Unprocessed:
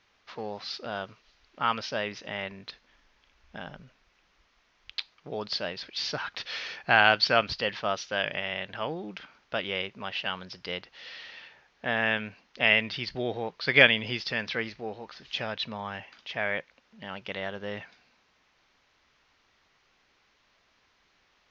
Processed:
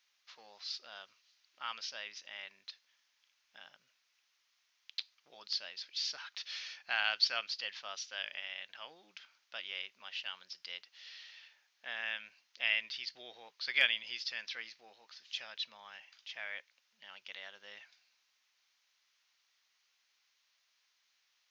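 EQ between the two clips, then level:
first difference
low-shelf EQ 160 Hz −5.5 dB
notch filter 430 Hz, Q 12
0.0 dB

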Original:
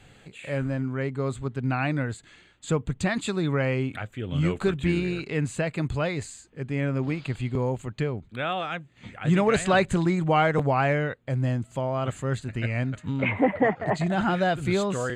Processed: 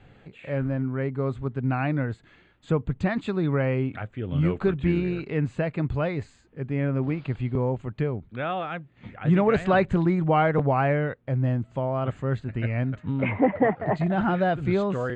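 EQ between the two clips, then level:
low-pass filter 1,700 Hz 6 dB per octave
high-frequency loss of the air 96 metres
+1.5 dB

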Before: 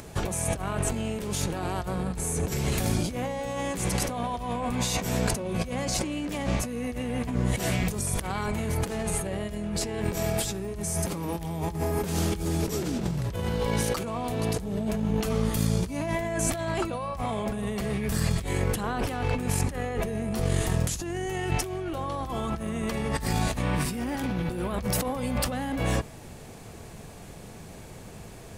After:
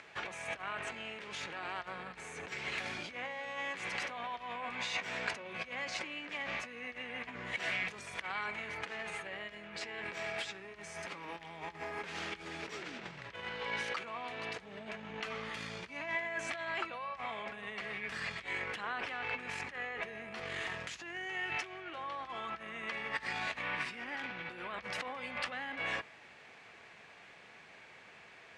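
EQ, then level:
resonant band-pass 2,100 Hz, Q 1.7
high-frequency loss of the air 77 metres
+2.5 dB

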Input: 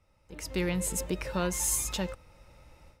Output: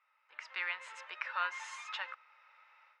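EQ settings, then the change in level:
high-pass filter 1,200 Hz 24 dB per octave
low-pass filter 2,000 Hz 12 dB per octave
high-frequency loss of the air 96 metres
+7.0 dB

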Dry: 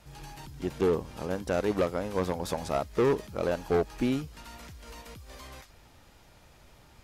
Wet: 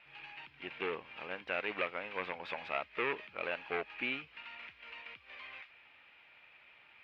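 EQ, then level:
resonant band-pass 2,500 Hz, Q 4
high-frequency loss of the air 400 metres
+14.5 dB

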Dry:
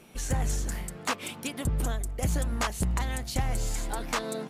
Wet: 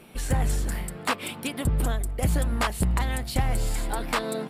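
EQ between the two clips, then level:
parametric band 6,300 Hz −11.5 dB 0.37 octaves
+4.0 dB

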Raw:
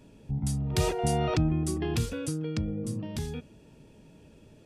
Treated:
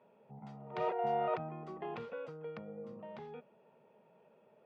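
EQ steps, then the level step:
high-pass filter 230 Hz 24 dB per octave
transistor ladder low-pass 1,800 Hz, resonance 85%
phaser with its sweep stopped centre 710 Hz, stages 4
+10.5 dB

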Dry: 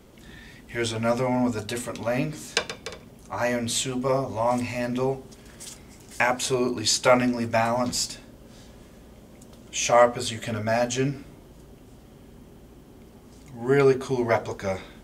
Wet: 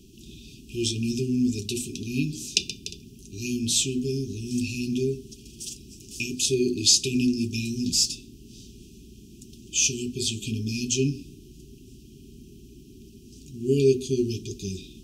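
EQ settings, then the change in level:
linear-phase brick-wall band-stop 420–2,400 Hz
parametric band 5,700 Hz +6.5 dB 0.48 octaves
+1.5 dB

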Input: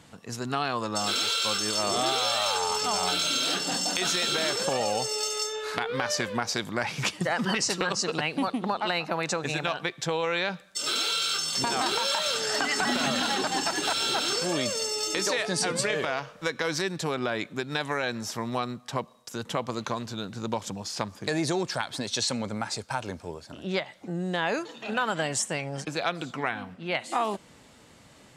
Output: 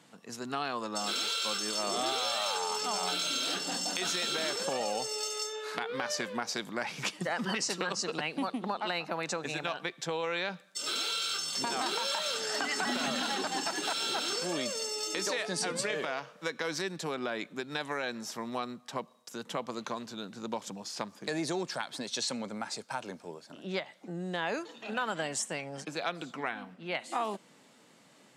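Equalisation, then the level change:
high-pass filter 160 Hz 24 dB per octave
−5.5 dB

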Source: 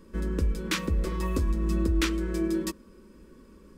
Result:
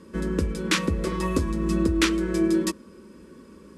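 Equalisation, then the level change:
high-pass filter 90 Hz 12 dB per octave
Butterworth low-pass 12,000 Hz 72 dB per octave
+6.0 dB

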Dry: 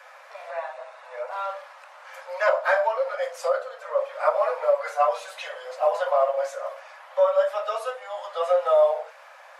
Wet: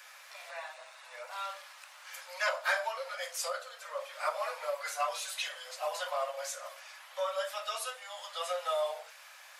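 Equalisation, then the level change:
first difference
parametric band 3,400 Hz +3 dB 1.5 octaves
+6.5 dB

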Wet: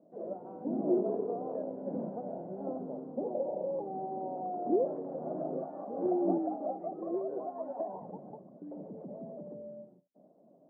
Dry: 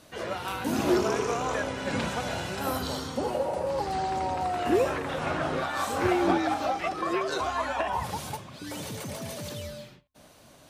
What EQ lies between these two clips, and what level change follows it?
elliptic band-pass filter 180–680 Hz, stop band 80 dB
−4.0 dB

